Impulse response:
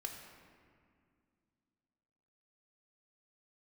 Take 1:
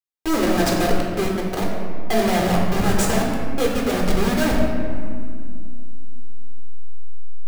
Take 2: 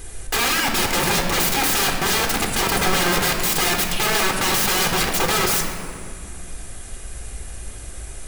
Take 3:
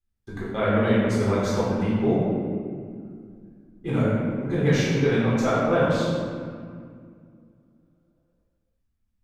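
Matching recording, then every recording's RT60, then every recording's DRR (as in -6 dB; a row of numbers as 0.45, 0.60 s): 2; 2.2, 2.2, 2.1 s; -1.5, 2.5, -9.0 dB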